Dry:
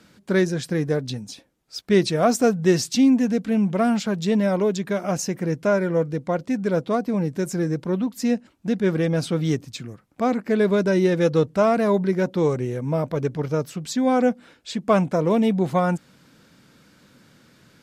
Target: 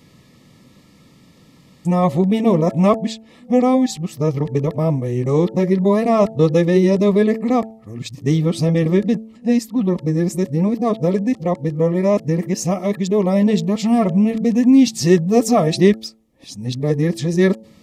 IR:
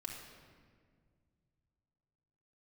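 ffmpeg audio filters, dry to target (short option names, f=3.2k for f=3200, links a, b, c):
-af "areverse,asuperstop=centerf=1500:order=20:qfactor=4.6,lowshelf=f=260:g=6,bandreject=f=111:t=h:w=4,bandreject=f=222:t=h:w=4,bandreject=f=333:t=h:w=4,bandreject=f=444:t=h:w=4,bandreject=f=555:t=h:w=4,bandreject=f=666:t=h:w=4,bandreject=f=777:t=h:w=4,bandreject=f=888:t=h:w=4,volume=2.5dB"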